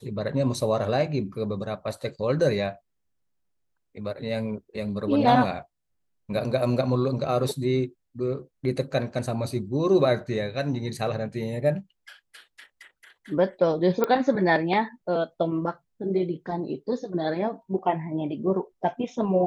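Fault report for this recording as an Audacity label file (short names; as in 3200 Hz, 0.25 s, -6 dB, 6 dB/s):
14.040000	14.040000	pop -11 dBFS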